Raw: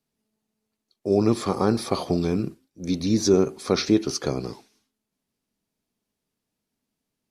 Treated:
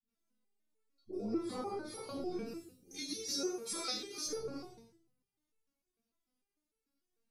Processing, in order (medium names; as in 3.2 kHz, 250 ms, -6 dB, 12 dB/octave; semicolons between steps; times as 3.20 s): 2.38–4.23 s: tilt EQ +4 dB/octave; compression 4:1, threshold -28 dBFS, peak gain reduction 12.5 dB; phase dispersion highs, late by 70 ms, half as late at 380 Hz; reverberation RT60 0.55 s, pre-delay 4 ms, DRR -6 dB; resonator arpeggio 6.7 Hz 230–440 Hz; trim -2.5 dB